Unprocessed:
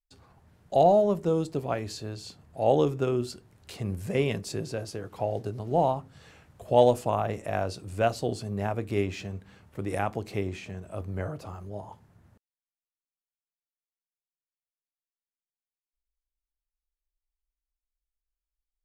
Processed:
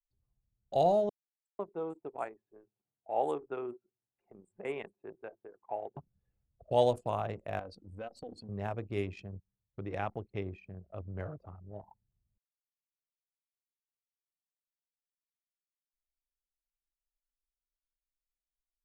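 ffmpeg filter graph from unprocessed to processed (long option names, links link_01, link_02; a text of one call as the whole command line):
ffmpeg -i in.wav -filter_complex "[0:a]asettb=1/sr,asplit=3[link_01][link_02][link_03];[link_01]atrim=end=1.094[link_04];[link_02]atrim=start=1.09:end=5.97,asetpts=PTS-STARTPTS,afade=type=in:duration=0.004:curve=qsin,afade=type=out:start_time=4.876:duration=0.004:curve=qsin,asuperstop=centerf=5100:order=4:qfactor=0.99,highpass=380,equalizer=frequency=540:width_type=q:width=4:gain=-5,equalizer=frequency=850:width_type=q:width=4:gain=5,equalizer=frequency=3000:width_type=q:width=4:gain=-8,lowpass=frequency=9700:width=0.5412,lowpass=frequency=9700:width=1.3066,acrossover=split=5300[link_05][link_06];[link_05]adelay=500[link_07];[link_07][link_06]amix=inputs=2:normalize=0,atrim=end_sample=215208[link_08];[link_03]atrim=start=5.966[link_09];[link_04][link_08]acrossfade=duration=0.004:curve1=hsin:curve2=qsin[link_10];[link_10][link_09]acrossfade=duration=0.004:curve1=qsin:curve2=hsin,asettb=1/sr,asplit=3[link_11][link_12][link_13];[link_11]atrim=end=7.594[link_14];[link_12]atrim=start=7.59:end=8.49,asetpts=PTS-STARTPTS,afade=type=in:duration=0.004:curve=qsin,afade=type=out:start_time=0.896:duration=0.004:curve=qsin,aecho=1:1:3.9:0.75,atrim=end_sample=39690,acompressor=threshold=-35dB:ratio=3:attack=3.2:release=140:knee=1:detection=peak[link_15];[link_13]atrim=start=8.486[link_16];[link_14][link_15]acrossfade=duration=0.004:curve1=hsin:curve2=qsin[link_17];[link_17][link_16]acrossfade=duration=0.004:curve1=qsin:curve2=hsin,asettb=1/sr,asplit=3[link_18][link_19][link_20];[link_18]atrim=end=9.354[link_21];[link_19]atrim=start=9.35:end=10.42,asetpts=PTS-STARTPTS,afade=type=in:duration=0.004:curve=qsin,afade=type=out:start_time=1.066:duration=0.004:curve=qsin,lowpass=frequency=6200:width=0.5412,lowpass=frequency=6200:width=1.3066,agate=range=-10dB:threshold=-44dB:ratio=16:release=100:detection=peak[link_22];[link_20]atrim=start=10.416[link_23];[link_21][link_22]acrossfade=duration=0.004:curve1=hsin:curve2=qsin[link_24];[link_24][link_23]acrossfade=duration=0.004:curve1=qsin:curve2=hsin,anlmdn=2.51,equalizer=frequency=250:width_type=o:width=0.67:gain=-3,equalizer=frequency=4000:width_type=o:width=0.67:gain=4,equalizer=frequency=10000:width_type=o:width=0.67:gain=5,volume=-6.5dB" out.wav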